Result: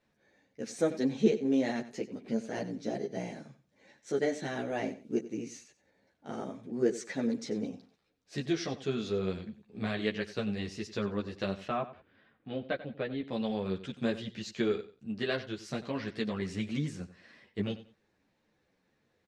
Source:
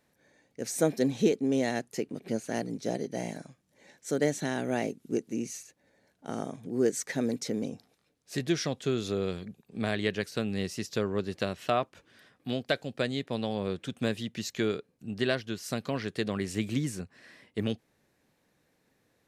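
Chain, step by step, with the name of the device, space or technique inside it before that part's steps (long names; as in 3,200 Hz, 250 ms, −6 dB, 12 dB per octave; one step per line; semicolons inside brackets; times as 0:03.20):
string-machine ensemble chorus (string-ensemble chorus; low-pass filter 5,200 Hz 12 dB per octave)
0:11.68–0:13.28: high-frequency loss of the air 360 metres
repeating echo 92 ms, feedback 23%, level −15 dB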